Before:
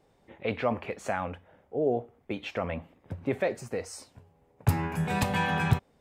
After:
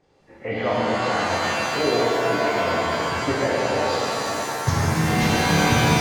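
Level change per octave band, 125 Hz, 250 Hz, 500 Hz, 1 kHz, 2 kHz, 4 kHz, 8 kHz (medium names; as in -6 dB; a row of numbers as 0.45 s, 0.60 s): +7.0 dB, +9.0 dB, +9.5 dB, +12.0 dB, +11.5 dB, +16.5 dB, +15.5 dB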